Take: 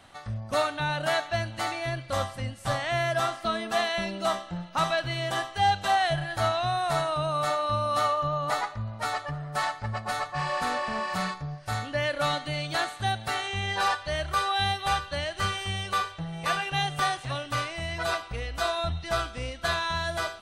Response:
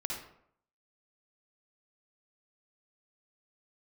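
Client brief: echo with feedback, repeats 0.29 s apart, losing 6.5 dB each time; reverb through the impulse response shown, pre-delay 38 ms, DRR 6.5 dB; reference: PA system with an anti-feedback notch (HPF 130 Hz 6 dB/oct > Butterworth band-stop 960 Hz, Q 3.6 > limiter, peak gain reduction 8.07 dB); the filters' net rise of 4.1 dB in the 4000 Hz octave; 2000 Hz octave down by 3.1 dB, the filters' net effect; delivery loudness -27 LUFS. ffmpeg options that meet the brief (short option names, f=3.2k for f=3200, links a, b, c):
-filter_complex "[0:a]equalizer=f=2k:t=o:g=-5.5,equalizer=f=4k:t=o:g=6.5,aecho=1:1:290|580|870|1160|1450|1740:0.473|0.222|0.105|0.0491|0.0231|0.0109,asplit=2[a][b];[1:a]atrim=start_sample=2205,adelay=38[c];[b][c]afir=irnorm=-1:irlink=0,volume=-8.5dB[d];[a][d]amix=inputs=2:normalize=0,highpass=f=130:p=1,asuperstop=centerf=960:order=8:qfactor=3.6,volume=2.5dB,alimiter=limit=-18dB:level=0:latency=1"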